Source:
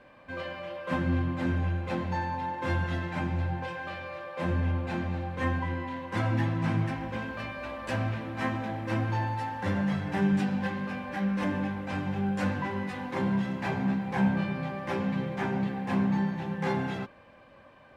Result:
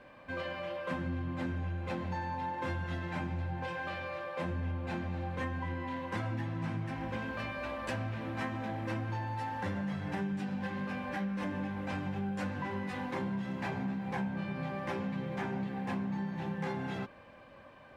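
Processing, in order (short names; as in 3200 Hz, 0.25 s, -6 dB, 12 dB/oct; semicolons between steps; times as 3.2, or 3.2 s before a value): compressor, threshold -33 dBFS, peak gain reduction 12 dB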